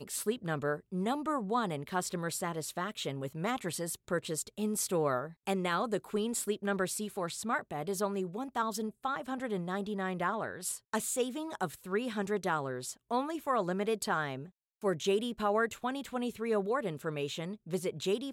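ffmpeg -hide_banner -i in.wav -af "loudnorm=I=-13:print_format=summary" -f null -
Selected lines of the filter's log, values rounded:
Input Integrated:    -34.4 LUFS
Input True Peak:     -19.0 dBTP
Input LRA:             1.9 LU
Input Threshold:     -44.4 LUFS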